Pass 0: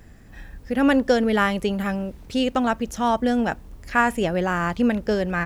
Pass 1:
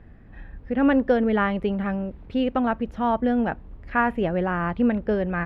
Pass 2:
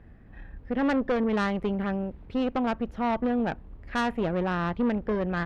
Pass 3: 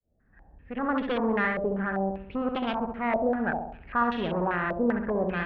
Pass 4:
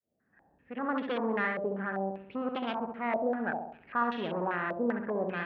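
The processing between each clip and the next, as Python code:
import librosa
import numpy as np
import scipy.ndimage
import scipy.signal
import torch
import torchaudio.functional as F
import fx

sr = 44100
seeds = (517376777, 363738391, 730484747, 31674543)

y1 = fx.air_absorb(x, sr, metres=470.0)
y2 = fx.tube_stage(y1, sr, drive_db=21.0, bias=0.6)
y3 = fx.fade_in_head(y2, sr, length_s=1.13)
y3 = fx.room_flutter(y3, sr, wall_m=11.5, rt60_s=0.73)
y3 = fx.filter_held_lowpass(y3, sr, hz=5.1, low_hz=600.0, high_hz=3300.0)
y3 = y3 * librosa.db_to_amplitude(-4.0)
y4 = scipy.signal.sosfilt(scipy.signal.butter(2, 190.0, 'highpass', fs=sr, output='sos'), y3)
y4 = y4 * librosa.db_to_amplitude(-4.0)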